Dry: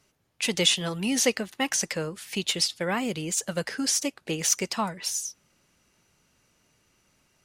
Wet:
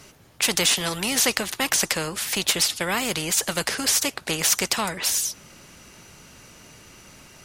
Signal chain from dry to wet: spectrum-flattening compressor 2:1; trim +5.5 dB

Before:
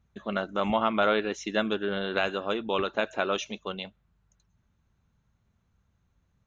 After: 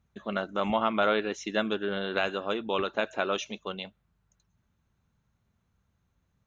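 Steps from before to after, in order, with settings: bass shelf 62 Hz -6 dB; trim -1 dB

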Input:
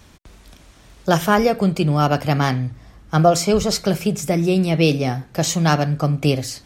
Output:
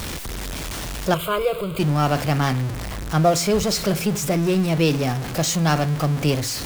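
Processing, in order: jump at every zero crossing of -19.5 dBFS; 1.14–1.79 s: static phaser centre 1.2 kHz, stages 8; trim -4.5 dB

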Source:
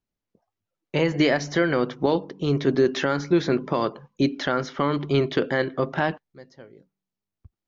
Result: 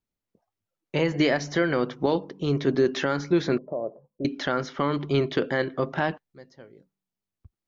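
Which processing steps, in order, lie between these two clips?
3.58–4.25 s: four-pole ladder low-pass 670 Hz, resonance 70%; trim -2 dB

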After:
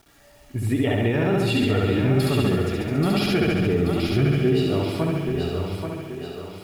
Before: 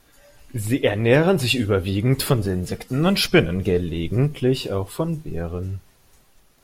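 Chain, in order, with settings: flutter echo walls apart 11.8 m, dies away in 1.2 s; peak limiter -11 dBFS, peak gain reduction 10.5 dB; treble shelf 4.5 kHz -10.5 dB; bit crusher 9-bit; comb of notches 520 Hz; thinning echo 832 ms, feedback 49%, high-pass 230 Hz, level -5 dB

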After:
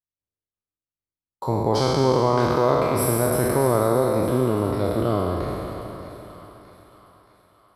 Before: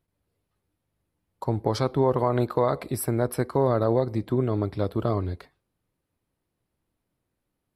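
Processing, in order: spectral sustain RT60 2.72 s; expander -57 dBFS; two-band feedback delay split 860 Hz, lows 362 ms, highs 623 ms, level -12 dB

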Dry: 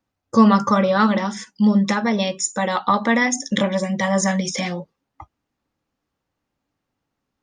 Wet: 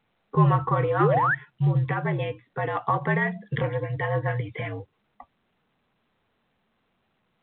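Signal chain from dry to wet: mistuned SSB -68 Hz 150–2800 Hz; painted sound rise, 1.00–1.35 s, 320–1900 Hz -16 dBFS; trim -6 dB; A-law 64 kbps 8 kHz

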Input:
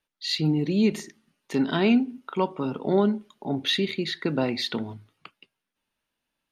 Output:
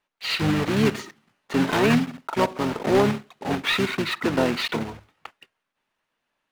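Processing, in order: block-companded coder 3-bit; harmony voices -12 st -11 dB, -7 st -4 dB; overdrive pedal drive 13 dB, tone 1.6 kHz, clips at -6.5 dBFS

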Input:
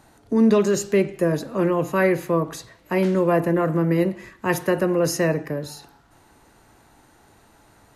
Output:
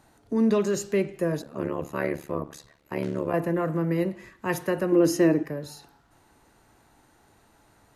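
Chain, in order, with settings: 1.42–3.34 s: AM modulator 72 Hz, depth 90%; 4.92–5.43 s: small resonant body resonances 320/3100 Hz, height 14 dB; trim -5.5 dB

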